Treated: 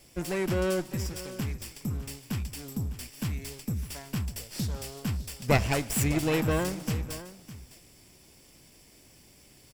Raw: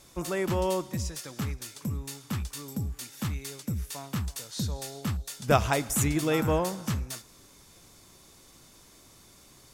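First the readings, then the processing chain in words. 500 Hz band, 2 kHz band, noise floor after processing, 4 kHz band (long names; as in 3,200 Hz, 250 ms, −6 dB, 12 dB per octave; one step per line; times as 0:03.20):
−1.5 dB, +1.0 dB, −57 dBFS, −0.5 dB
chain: lower of the sound and its delayed copy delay 0.39 ms
single-tap delay 607 ms −15 dB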